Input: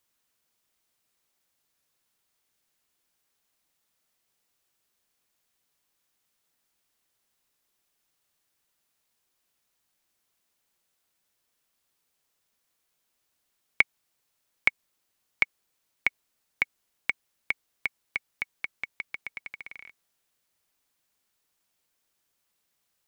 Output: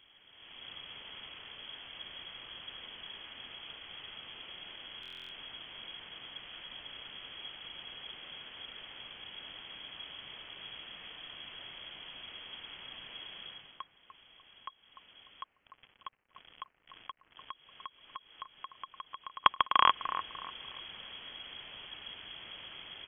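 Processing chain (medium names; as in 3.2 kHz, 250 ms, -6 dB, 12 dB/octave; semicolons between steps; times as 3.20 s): tilt EQ -3 dB/octave; level rider gain up to 16 dB; peak limiter -9 dBFS, peak gain reduction 8 dB; slow attack 366 ms; 15.43–17.51 s: companded quantiser 6-bit; thinning echo 297 ms, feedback 35%, high-pass 1.1 kHz, level -10 dB; frequency inversion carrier 3.3 kHz; buffer glitch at 5.01 s, samples 1024, times 12; trim +18 dB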